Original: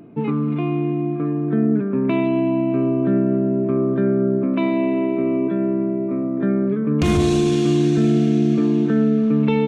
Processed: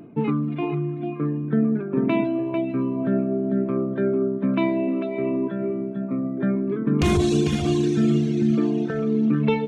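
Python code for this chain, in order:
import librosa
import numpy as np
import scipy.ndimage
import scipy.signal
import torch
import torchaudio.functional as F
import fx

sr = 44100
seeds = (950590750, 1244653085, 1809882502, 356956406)

y = x + 10.0 ** (-6.5 / 20.0) * np.pad(x, (int(447 * sr / 1000.0), 0))[:len(x)]
y = fx.dereverb_blind(y, sr, rt60_s=1.8)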